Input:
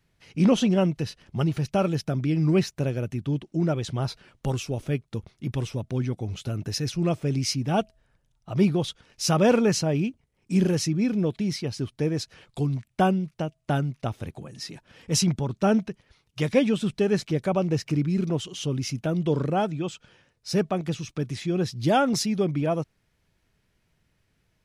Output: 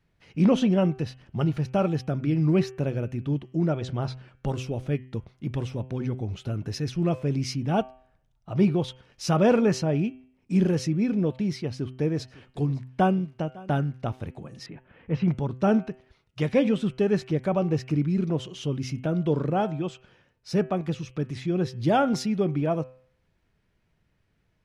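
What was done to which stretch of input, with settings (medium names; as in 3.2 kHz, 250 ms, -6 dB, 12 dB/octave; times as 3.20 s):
3.70–4.48 s: low-pass 9 kHz
11.60–13.82 s: delay 555 ms -21.5 dB
14.66–15.28 s: low-pass 2.6 kHz 24 dB/octave
whole clip: treble shelf 4.4 kHz -12 dB; de-hum 128.5 Hz, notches 25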